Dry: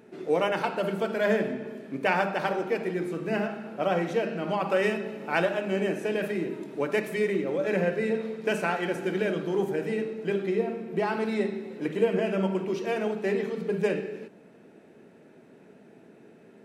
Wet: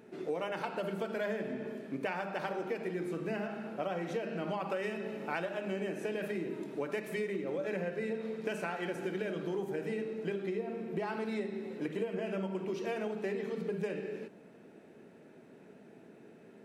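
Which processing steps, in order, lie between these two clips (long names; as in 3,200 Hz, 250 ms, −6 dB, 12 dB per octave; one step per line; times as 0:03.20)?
downward compressor, threshold −30 dBFS, peak gain reduction 12 dB
level −2.5 dB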